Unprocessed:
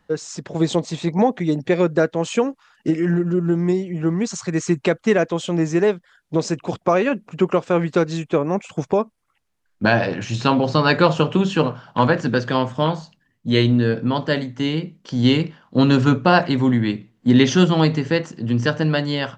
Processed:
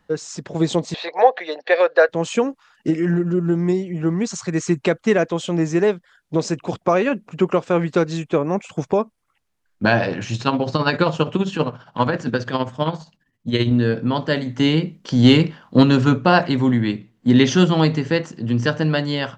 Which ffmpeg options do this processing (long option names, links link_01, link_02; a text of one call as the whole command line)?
ffmpeg -i in.wav -filter_complex "[0:a]asettb=1/sr,asplit=3[link_01][link_02][link_03];[link_01]atrim=end=0.944[link_04];[link_02]atrim=start=0.94:end=2.09,asetpts=PTS-STARTPTS,afade=type=in:duration=0.004:curve=qsin,afade=type=out:start_time=1.146:duration=0.004:curve=qsin,highpass=frequency=500:width=0.5412,highpass=frequency=500:width=1.3066,equalizer=frequency=510:width_type=q:width=4:gain=8,equalizer=frequency=730:width_type=q:width=4:gain=7,equalizer=frequency=1100:width_type=q:width=4:gain=4,equalizer=frequency=1700:width_type=q:width=4:gain=10,equalizer=frequency=2700:width_type=q:width=4:gain=5,equalizer=frequency=4200:width_type=q:width=4:gain=9,lowpass=frequency=4900:width=0.5412,lowpass=frequency=4900:width=1.3066[link_05];[link_03]atrim=start=2.086[link_06];[link_04][link_05]acrossfade=duration=0.004:curve1=hsin:curve2=qsin[link_07];[link_07][link_06]acrossfade=duration=0.004:curve1=qsin:curve2=hsin,asettb=1/sr,asplit=3[link_08][link_09][link_10];[link_08]atrim=end=10.354[link_11];[link_09]atrim=start=10.35:end=13.71,asetpts=PTS-STARTPTS,afade=type=in:duration=0.004:curve=qsin,afade=type=out:start_time=3.356:duration=0.004:curve=qsin,tremolo=f=15:d=0.63[link_12];[link_10]atrim=start=13.706[link_13];[link_11][link_12]acrossfade=duration=0.004:curve1=hsin:curve2=qsin[link_14];[link_14][link_13]acrossfade=duration=0.004:curve1=qsin:curve2=hsin,asettb=1/sr,asplit=3[link_15][link_16][link_17];[link_15]atrim=end=14.464[link_18];[link_16]atrim=start=14.46:end=15.83,asetpts=PTS-STARTPTS,afade=type=in:duration=0.004:curve=qsin,afade=type=out:start_time=1.366:duration=0.004:curve=qsin,acontrast=29[link_19];[link_17]atrim=start=15.826[link_20];[link_18][link_19]acrossfade=duration=0.004:curve1=hsin:curve2=qsin[link_21];[link_21][link_20]acrossfade=duration=0.004:curve1=qsin:curve2=hsin" out.wav